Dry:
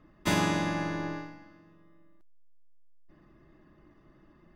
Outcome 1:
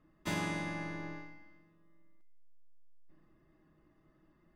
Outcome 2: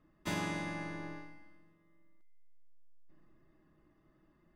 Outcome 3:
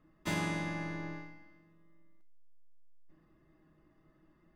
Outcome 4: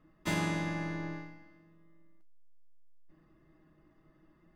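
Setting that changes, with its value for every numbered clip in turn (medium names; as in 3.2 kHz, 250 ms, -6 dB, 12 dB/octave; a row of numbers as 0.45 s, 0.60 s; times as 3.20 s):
feedback comb, decay: 0.81 s, 1.7 s, 0.38 s, 0.16 s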